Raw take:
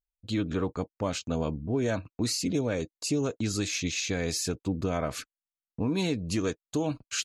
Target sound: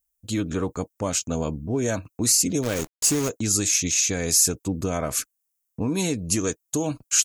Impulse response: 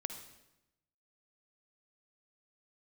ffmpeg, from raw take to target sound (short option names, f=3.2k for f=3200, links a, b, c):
-filter_complex "[0:a]aexciter=amount=6.2:drive=2.6:freq=5.8k,asplit=3[a][b][c];[a]afade=t=out:st=2.62:d=0.02[d];[b]acrusher=bits=6:dc=4:mix=0:aa=0.000001,afade=t=in:st=2.62:d=0.02,afade=t=out:st=3.28:d=0.02[e];[c]afade=t=in:st=3.28:d=0.02[f];[d][e][f]amix=inputs=3:normalize=0,volume=3dB"